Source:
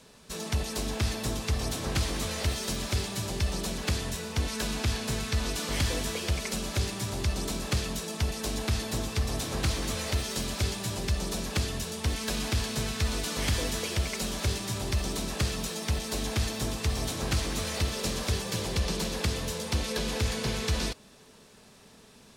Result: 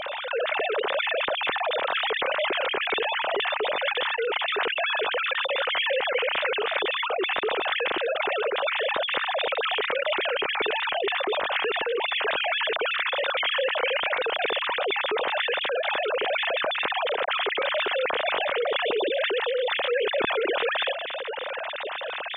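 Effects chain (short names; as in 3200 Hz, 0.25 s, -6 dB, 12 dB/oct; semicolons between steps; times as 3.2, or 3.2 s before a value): sine-wave speech; fast leveller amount 70%; gain -3 dB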